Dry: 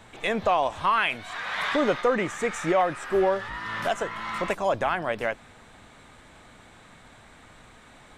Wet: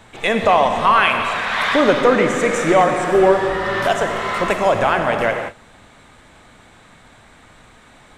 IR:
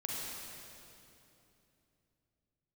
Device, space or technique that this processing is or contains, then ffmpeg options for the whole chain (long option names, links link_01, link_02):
keyed gated reverb: -filter_complex "[0:a]asplit=3[link_01][link_02][link_03];[1:a]atrim=start_sample=2205[link_04];[link_02][link_04]afir=irnorm=-1:irlink=0[link_05];[link_03]apad=whole_len=360623[link_06];[link_05][link_06]sidechaingate=range=-33dB:threshold=-45dB:ratio=16:detection=peak,volume=-1dB[link_07];[link_01][link_07]amix=inputs=2:normalize=0,volume=4dB"